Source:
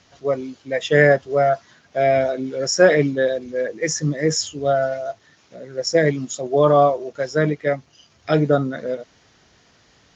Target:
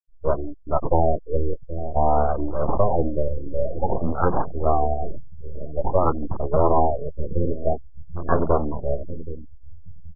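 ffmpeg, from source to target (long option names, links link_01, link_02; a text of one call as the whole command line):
ffmpeg -i in.wav -filter_complex "[0:a]acrossover=split=1700[link_01][link_02];[link_01]lowshelf=frequency=130:gain=-3[link_03];[link_02]acontrast=28[link_04];[link_03][link_04]amix=inputs=2:normalize=0,asetrate=24750,aresample=44100,atempo=1.7818,aeval=exprs='abs(val(0))':channel_layout=same,asplit=2[link_05][link_06];[link_06]adelay=775,lowpass=frequency=990:poles=1,volume=-17dB,asplit=2[link_07][link_08];[link_08]adelay=775,lowpass=frequency=990:poles=1,volume=0.49,asplit=2[link_09][link_10];[link_10]adelay=775,lowpass=frequency=990:poles=1,volume=0.49,asplit=2[link_11][link_12];[link_12]adelay=775,lowpass=frequency=990:poles=1,volume=0.49[link_13];[link_07][link_09][link_11][link_13]amix=inputs=4:normalize=0[link_14];[link_05][link_14]amix=inputs=2:normalize=0,acrossover=split=360|1300[link_15][link_16][link_17];[link_15]acompressor=threshold=-23dB:ratio=4[link_18];[link_16]acompressor=threshold=-24dB:ratio=4[link_19];[link_17]acompressor=threshold=-31dB:ratio=4[link_20];[link_18][link_19][link_20]amix=inputs=3:normalize=0,afwtdn=0.02,afftfilt=real='re*gte(hypot(re,im),0.0112)':imag='im*gte(hypot(re,im),0.0112)':win_size=1024:overlap=0.75,afftfilt=real='re*lt(b*sr/1024,550*pow(1700/550,0.5+0.5*sin(2*PI*0.51*pts/sr)))':imag='im*lt(b*sr/1024,550*pow(1700/550,0.5+0.5*sin(2*PI*0.51*pts/sr)))':win_size=1024:overlap=0.75,volume=6dB" out.wav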